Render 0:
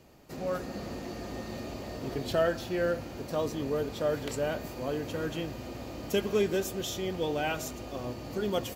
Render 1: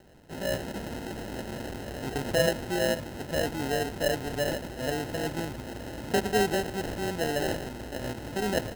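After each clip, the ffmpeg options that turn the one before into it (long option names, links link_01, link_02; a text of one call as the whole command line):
ffmpeg -i in.wav -af "acrusher=samples=38:mix=1:aa=0.000001,volume=2dB" out.wav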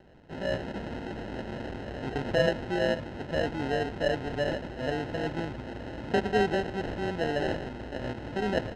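ffmpeg -i in.wav -af "lowpass=3300" out.wav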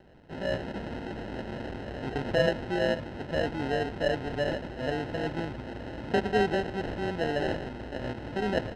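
ffmpeg -i in.wav -af "bandreject=frequency=6800:width=10" out.wav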